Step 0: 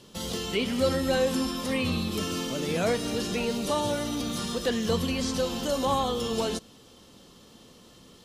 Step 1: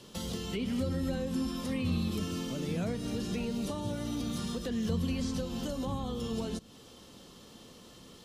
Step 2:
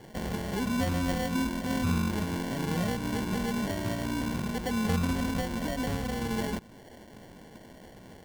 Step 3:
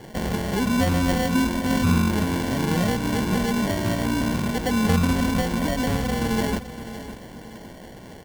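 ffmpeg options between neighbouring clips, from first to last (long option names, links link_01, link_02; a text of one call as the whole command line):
ffmpeg -i in.wav -filter_complex "[0:a]acrossover=split=260[link_01][link_02];[link_02]acompressor=threshold=-40dB:ratio=5[link_03];[link_01][link_03]amix=inputs=2:normalize=0" out.wav
ffmpeg -i in.wav -af "acrusher=samples=35:mix=1:aa=0.000001,volume=3.5dB" out.wav
ffmpeg -i in.wav -af "aecho=1:1:562|1124|1686:0.224|0.0784|0.0274,volume=7.5dB" out.wav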